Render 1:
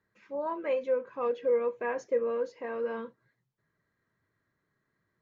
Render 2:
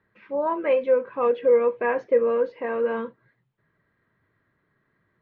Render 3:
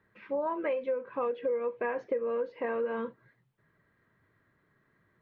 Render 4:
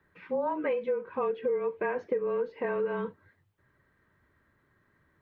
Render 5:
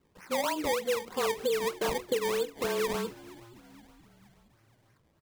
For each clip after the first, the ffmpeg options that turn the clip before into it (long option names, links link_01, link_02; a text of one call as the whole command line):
ffmpeg -i in.wav -af "lowpass=frequency=3400:width=0.5412,lowpass=frequency=3400:width=1.3066,volume=8.5dB" out.wav
ffmpeg -i in.wav -af "acompressor=threshold=-29dB:ratio=6" out.wav
ffmpeg -i in.wav -af "afreqshift=-30,volume=1.5dB" out.wav
ffmpeg -i in.wav -filter_complex "[0:a]acrusher=samples=22:mix=1:aa=0.000001:lfo=1:lforange=22:lforate=3.2,asplit=5[link_01][link_02][link_03][link_04][link_05];[link_02]adelay=471,afreqshift=-80,volume=-20dB[link_06];[link_03]adelay=942,afreqshift=-160,volume=-25.4dB[link_07];[link_04]adelay=1413,afreqshift=-240,volume=-30.7dB[link_08];[link_05]adelay=1884,afreqshift=-320,volume=-36.1dB[link_09];[link_01][link_06][link_07][link_08][link_09]amix=inputs=5:normalize=0" out.wav